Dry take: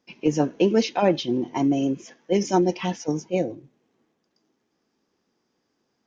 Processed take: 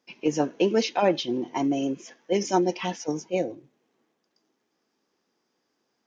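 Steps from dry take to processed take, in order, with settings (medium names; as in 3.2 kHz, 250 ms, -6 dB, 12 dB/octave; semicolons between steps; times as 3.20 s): bass shelf 190 Hz -12 dB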